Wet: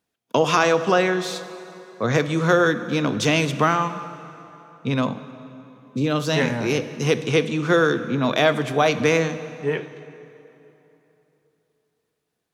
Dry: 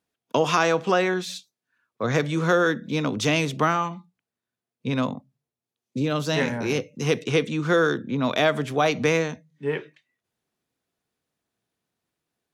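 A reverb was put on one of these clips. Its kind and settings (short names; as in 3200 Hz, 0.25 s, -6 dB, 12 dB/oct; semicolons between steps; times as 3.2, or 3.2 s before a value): plate-style reverb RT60 3.2 s, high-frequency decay 0.75×, DRR 12 dB; gain +2.5 dB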